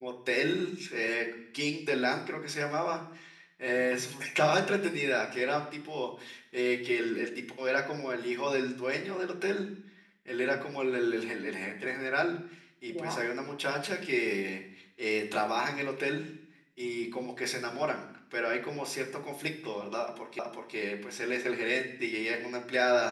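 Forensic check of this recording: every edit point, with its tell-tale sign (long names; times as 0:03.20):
0:20.39: the same again, the last 0.37 s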